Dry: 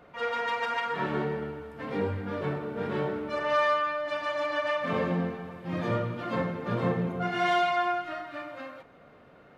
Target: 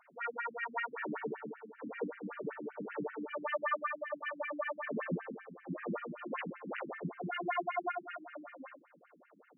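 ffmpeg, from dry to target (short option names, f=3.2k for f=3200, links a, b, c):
-filter_complex "[0:a]asettb=1/sr,asplit=3[a][b][c];[a]atrim=end=6.384[d];[b]atrim=start=6.38:end=6.92,asetpts=PTS-STARTPTS,afade=t=in:d=0.004:c=qsin,afade=t=out:st=0.536:d=0.004:c=qsin,aeval=exprs='(mod(17.8*val(0)+1,2)-1)/17.8':c=same[e];[c]atrim=start=6.916[f];[d][e]acrossfade=d=0.004:c1=hsin:c2=qsin[g];[g][f]acrossfade=d=0.004:c1=qsin:c2=hsin,afftfilt=real='re*between(b*sr/1024,220*pow(2200/220,0.5+0.5*sin(2*PI*5.2*pts/sr))/1.41,220*pow(2200/220,0.5+0.5*sin(2*PI*5.2*pts/sr))*1.41)':imag='im*between(b*sr/1024,220*pow(2200/220,0.5+0.5*sin(2*PI*5.2*pts/sr))/1.41,220*pow(2200/220,0.5+0.5*sin(2*PI*5.2*pts/sr))*1.41)':win_size=1024:overlap=0.75,volume=-2dB"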